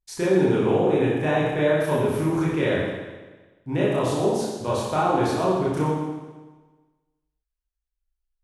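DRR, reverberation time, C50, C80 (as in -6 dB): -8.0 dB, 1.3 s, -0.5 dB, 1.5 dB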